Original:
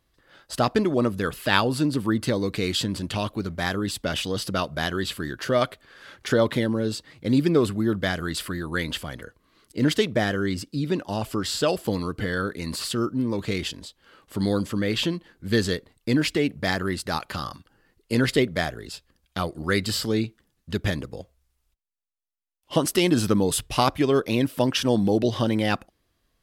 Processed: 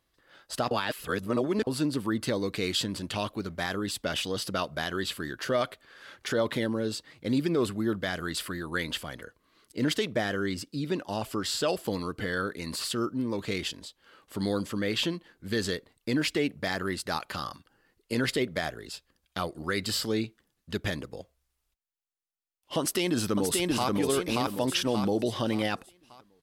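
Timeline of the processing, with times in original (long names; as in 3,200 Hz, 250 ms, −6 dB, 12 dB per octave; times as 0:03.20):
0:00.71–0:01.67: reverse
0:22.79–0:23.95: delay throw 580 ms, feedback 35%, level −2 dB
whole clip: brickwall limiter −13 dBFS; low-shelf EQ 200 Hz −7 dB; level −2.5 dB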